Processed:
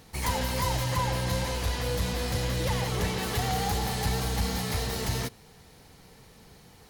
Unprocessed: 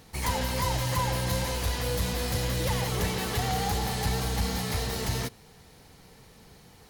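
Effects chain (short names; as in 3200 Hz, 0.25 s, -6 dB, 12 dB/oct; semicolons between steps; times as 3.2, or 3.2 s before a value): 0.84–3.23 high shelf 10000 Hz -7 dB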